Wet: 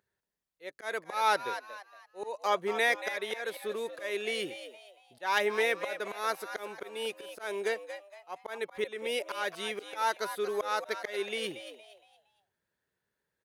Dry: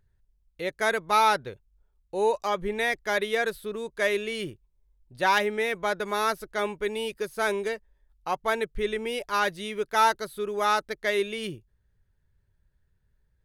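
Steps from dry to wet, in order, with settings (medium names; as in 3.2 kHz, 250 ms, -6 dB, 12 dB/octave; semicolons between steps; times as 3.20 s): high-pass 340 Hz 12 dB/octave; slow attack 284 ms; on a send: frequency-shifting echo 232 ms, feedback 34%, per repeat +100 Hz, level -11 dB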